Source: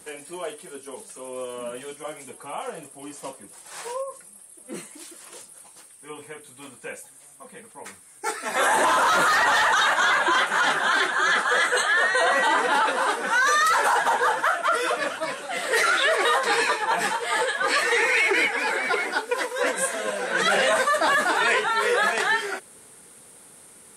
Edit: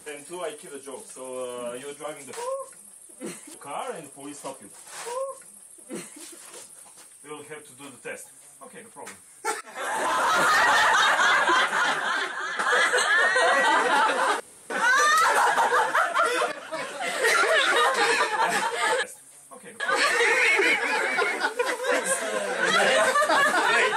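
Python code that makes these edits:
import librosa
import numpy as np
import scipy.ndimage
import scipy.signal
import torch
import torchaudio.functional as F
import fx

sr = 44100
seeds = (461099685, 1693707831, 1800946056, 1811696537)

y = fx.edit(x, sr, fx.duplicate(start_s=3.81, length_s=1.21, to_s=2.33),
    fx.duplicate(start_s=6.92, length_s=0.77, to_s=17.52),
    fx.fade_in_from(start_s=8.4, length_s=0.97, floor_db=-19.0),
    fx.fade_out_to(start_s=10.33, length_s=1.05, floor_db=-12.5),
    fx.insert_room_tone(at_s=13.19, length_s=0.3),
    fx.fade_in_from(start_s=15.01, length_s=0.37, floor_db=-18.0),
    fx.reverse_span(start_s=15.92, length_s=0.29), tone=tone)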